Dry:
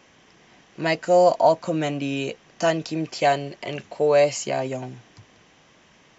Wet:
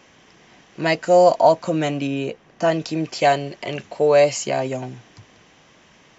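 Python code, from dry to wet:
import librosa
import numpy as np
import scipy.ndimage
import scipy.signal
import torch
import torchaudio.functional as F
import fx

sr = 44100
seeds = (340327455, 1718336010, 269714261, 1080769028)

y = fx.high_shelf(x, sr, hz=2500.0, db=-10.5, at=(2.07, 2.72))
y = F.gain(torch.from_numpy(y), 3.0).numpy()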